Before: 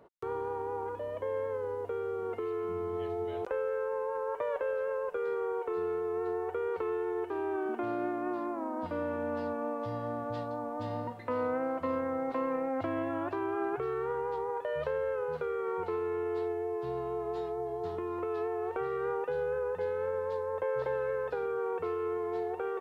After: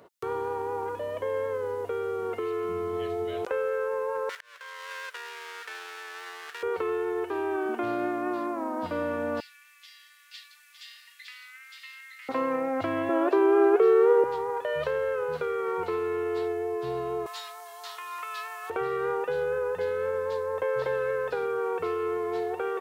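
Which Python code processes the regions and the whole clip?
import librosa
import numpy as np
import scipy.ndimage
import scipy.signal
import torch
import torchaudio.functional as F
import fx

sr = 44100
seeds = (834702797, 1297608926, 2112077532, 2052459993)

y = fx.chain(x, sr, fx.lower_of_two(delay_ms=0.54),
    fx.highpass(hz=1400.0, slope=12),
    fx.auto_swell(attack_ms=518.0), at=(4.29, 6.63))
y = fx.chain(y, sr, fx.steep_highpass(hz=2000.0, slope=36),
    fx.echo_single(ms=911, db=-3.5), at=(9.4, 12.29))
y = fx.chain(y, sr, fx.highpass(hz=300.0, slope=24),
    fx.peak_eq(hz=430.0, db=12.0, octaves=1.2), at=(13.09, 14.24))
y = fx.chain(y, sr, fx.highpass(hz=920.0, slope=24),
    fx.high_shelf(hz=2600.0, db=11.0), at=(17.26, 18.7))
y = scipy.signal.sosfilt(scipy.signal.butter(2, 77.0, 'highpass', fs=sr, output='sos'), y)
y = fx.high_shelf(y, sr, hz=2100.0, db=10.0)
y = fx.notch(y, sr, hz=860.0, q=15.0)
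y = F.gain(torch.from_numpy(y), 3.5).numpy()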